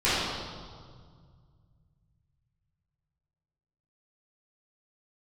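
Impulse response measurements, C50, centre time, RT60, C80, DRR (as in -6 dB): -3.0 dB, 0.122 s, 1.9 s, -0.5 dB, -14.0 dB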